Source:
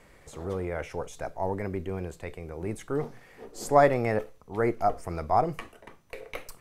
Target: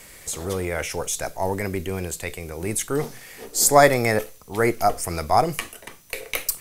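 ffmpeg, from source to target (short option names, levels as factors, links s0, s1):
-filter_complex "[0:a]asettb=1/sr,asplit=3[s0][s1][s2];[s0]atrim=end=3.564[s3];[s1]atrim=start=3.56:end=4.19,asetpts=PTS-STARTPTS,afade=t=in:d=0.004:c=qsin,afade=t=out:st=0.626:d=0.004:c=qsin,bandreject=f=2800:w=5.9[s4];[s2]atrim=start=4.186[s5];[s3][s4]acrossfade=d=0.004:c1=hsin:c2=qsin[s6];[s6][s5]acrossfade=d=0.004:c1=qsin:c2=hsin,acrossover=split=1200[s7][s8];[s8]crystalizer=i=6.5:c=0[s9];[s7][s9]amix=inputs=2:normalize=0,volume=1.78"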